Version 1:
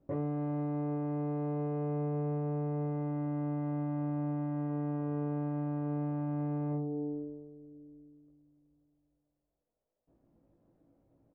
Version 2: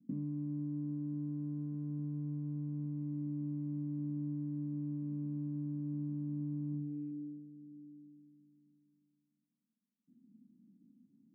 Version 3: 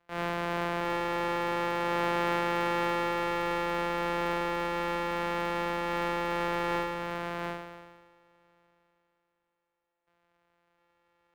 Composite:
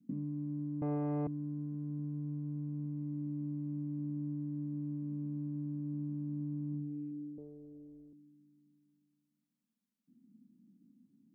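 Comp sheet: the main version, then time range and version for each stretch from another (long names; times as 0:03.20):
2
0:00.82–0:01.27: punch in from 1
0:07.38–0:08.13: punch in from 1
not used: 3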